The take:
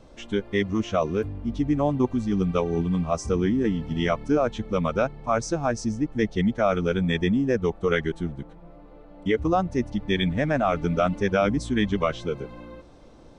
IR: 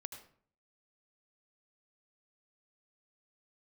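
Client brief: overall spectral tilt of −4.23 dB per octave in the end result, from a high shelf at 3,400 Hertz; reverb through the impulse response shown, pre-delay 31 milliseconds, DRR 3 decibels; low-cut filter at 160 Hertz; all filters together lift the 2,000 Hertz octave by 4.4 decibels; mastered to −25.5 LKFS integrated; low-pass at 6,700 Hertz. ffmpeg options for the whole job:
-filter_complex "[0:a]highpass=160,lowpass=6700,equalizer=frequency=2000:width_type=o:gain=4,highshelf=frequency=3400:gain=5,asplit=2[link_01][link_02];[1:a]atrim=start_sample=2205,adelay=31[link_03];[link_02][link_03]afir=irnorm=-1:irlink=0,volume=0.5dB[link_04];[link_01][link_04]amix=inputs=2:normalize=0,volume=-2dB"

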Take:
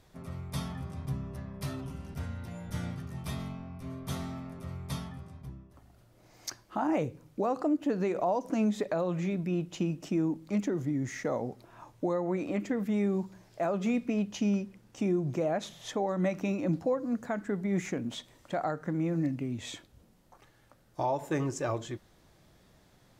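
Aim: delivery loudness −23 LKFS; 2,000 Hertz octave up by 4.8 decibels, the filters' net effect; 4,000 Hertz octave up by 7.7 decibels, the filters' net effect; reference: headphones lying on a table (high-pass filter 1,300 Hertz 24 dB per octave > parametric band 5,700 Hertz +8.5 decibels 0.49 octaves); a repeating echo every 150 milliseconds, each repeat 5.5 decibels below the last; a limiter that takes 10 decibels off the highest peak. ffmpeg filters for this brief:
ffmpeg -i in.wav -af "equalizer=frequency=2000:width_type=o:gain=4.5,equalizer=frequency=4000:width_type=o:gain=5.5,alimiter=level_in=3dB:limit=-24dB:level=0:latency=1,volume=-3dB,highpass=frequency=1300:width=0.5412,highpass=frequency=1300:width=1.3066,equalizer=frequency=5700:width_type=o:width=0.49:gain=8.5,aecho=1:1:150|300|450|600|750|900|1050:0.531|0.281|0.149|0.079|0.0419|0.0222|0.0118,volume=19dB" out.wav

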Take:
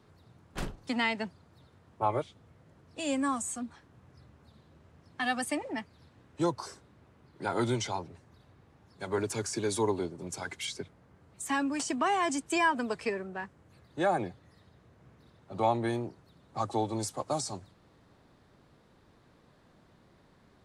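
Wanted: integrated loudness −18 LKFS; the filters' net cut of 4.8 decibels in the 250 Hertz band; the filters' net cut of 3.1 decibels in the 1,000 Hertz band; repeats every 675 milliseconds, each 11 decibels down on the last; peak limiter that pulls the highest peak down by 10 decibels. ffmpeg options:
ffmpeg -i in.wav -af "equalizer=frequency=250:width_type=o:gain=-6,equalizer=frequency=1000:width_type=o:gain=-3.5,alimiter=level_in=2.5dB:limit=-24dB:level=0:latency=1,volume=-2.5dB,aecho=1:1:675|1350|2025:0.282|0.0789|0.0221,volume=20.5dB" out.wav

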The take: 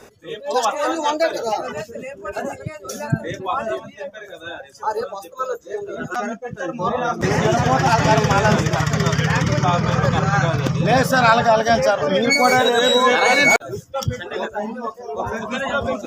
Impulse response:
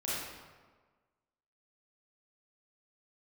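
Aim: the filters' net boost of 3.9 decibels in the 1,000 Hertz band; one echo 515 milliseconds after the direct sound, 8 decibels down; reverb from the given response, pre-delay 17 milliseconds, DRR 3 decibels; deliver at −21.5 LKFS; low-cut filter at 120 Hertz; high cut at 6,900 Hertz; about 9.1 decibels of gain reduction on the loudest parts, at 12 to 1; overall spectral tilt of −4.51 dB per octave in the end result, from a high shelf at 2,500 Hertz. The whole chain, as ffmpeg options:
-filter_complex "[0:a]highpass=120,lowpass=6900,equalizer=frequency=1000:width_type=o:gain=6,highshelf=frequency=2500:gain=-5,acompressor=threshold=-16dB:ratio=12,aecho=1:1:515:0.398,asplit=2[link_01][link_02];[1:a]atrim=start_sample=2205,adelay=17[link_03];[link_02][link_03]afir=irnorm=-1:irlink=0,volume=-8dB[link_04];[link_01][link_04]amix=inputs=2:normalize=0,volume=-1.5dB"

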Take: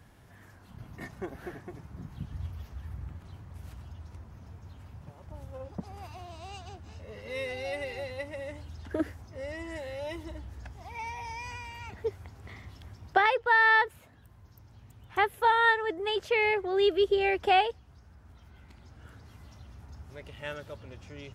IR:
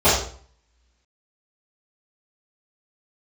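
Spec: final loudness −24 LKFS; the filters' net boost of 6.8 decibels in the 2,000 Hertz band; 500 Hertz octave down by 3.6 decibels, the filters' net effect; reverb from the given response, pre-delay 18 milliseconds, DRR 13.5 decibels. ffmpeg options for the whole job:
-filter_complex "[0:a]equalizer=frequency=500:width_type=o:gain=-5,equalizer=frequency=2000:width_type=o:gain=8,asplit=2[link_01][link_02];[1:a]atrim=start_sample=2205,adelay=18[link_03];[link_02][link_03]afir=irnorm=-1:irlink=0,volume=-37dB[link_04];[link_01][link_04]amix=inputs=2:normalize=0"

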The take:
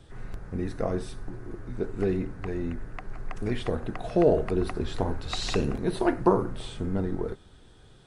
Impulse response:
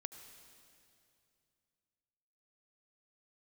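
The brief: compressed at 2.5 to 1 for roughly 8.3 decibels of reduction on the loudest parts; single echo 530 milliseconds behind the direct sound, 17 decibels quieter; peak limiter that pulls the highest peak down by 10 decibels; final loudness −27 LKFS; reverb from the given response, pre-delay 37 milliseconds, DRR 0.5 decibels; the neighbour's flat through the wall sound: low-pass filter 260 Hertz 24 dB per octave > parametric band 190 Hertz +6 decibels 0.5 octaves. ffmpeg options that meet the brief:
-filter_complex "[0:a]acompressor=threshold=-28dB:ratio=2.5,alimiter=level_in=1.5dB:limit=-24dB:level=0:latency=1,volume=-1.5dB,aecho=1:1:530:0.141,asplit=2[link_01][link_02];[1:a]atrim=start_sample=2205,adelay=37[link_03];[link_02][link_03]afir=irnorm=-1:irlink=0,volume=3dB[link_04];[link_01][link_04]amix=inputs=2:normalize=0,lowpass=frequency=260:width=0.5412,lowpass=frequency=260:width=1.3066,equalizer=frequency=190:width_type=o:width=0.5:gain=6,volume=8.5dB"

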